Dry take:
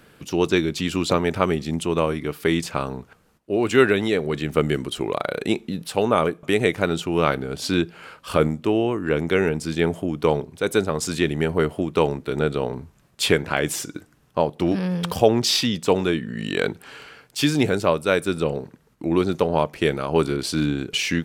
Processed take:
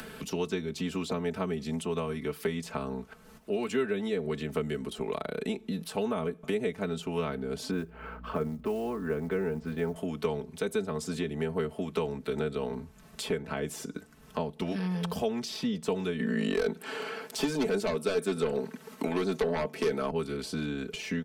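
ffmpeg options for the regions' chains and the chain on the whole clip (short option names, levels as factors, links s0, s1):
-filter_complex "[0:a]asettb=1/sr,asplit=3[s0][s1][s2];[s0]atrim=end=7.714[s3];[s1]atrim=start=7.71:end=9.96,asetpts=PTS-STARTPTS,afade=t=in:d=0.004:c=qsin,afade=t=out:st=2.246:d=0.004:c=qsin,lowpass=1400,acrusher=bits=9:mode=log:mix=0:aa=0.000001,aeval=exprs='val(0)+0.00447*(sin(2*PI*60*n/s)+sin(2*PI*2*60*n/s)/2+sin(2*PI*3*60*n/s)/3+sin(2*PI*4*60*n/s)/4+sin(2*PI*5*60*n/s)/5)':c=same[s4];[s2]atrim=start=9.956[s5];[s3][s4]acrossfade=d=0.004:c1=hsin:c2=qsin[s6];[s6][s5]acrossfade=d=0.004:c1=qsin:c2=hsin,asettb=1/sr,asplit=3[s7][s8][s9];[s7]atrim=end=16.194[s10];[s8]atrim=start=16.19:end=20.11,asetpts=PTS-STARTPTS,afade=t=in:d=0.004:c=qsin,afade=t=out:st=3.916:d=0.004:c=qsin,highpass=240,aeval=exprs='0.631*sin(PI/2*3.16*val(0)/0.631)':c=same[s11];[s9]atrim=start=20.106[s12];[s10][s11]acrossfade=d=0.004:c1=hsin:c2=qsin[s13];[s13][s12]acrossfade=d=0.004:c1=qsin:c2=hsin,acrossover=split=92|360|1100[s14][s15][s16][s17];[s14]acompressor=threshold=0.00631:ratio=4[s18];[s15]acompressor=threshold=0.0282:ratio=4[s19];[s16]acompressor=threshold=0.0224:ratio=4[s20];[s17]acompressor=threshold=0.0112:ratio=4[s21];[s18][s19][s20][s21]amix=inputs=4:normalize=0,aecho=1:1:4.6:0.85,acompressor=mode=upward:threshold=0.0355:ratio=2.5,volume=0.562"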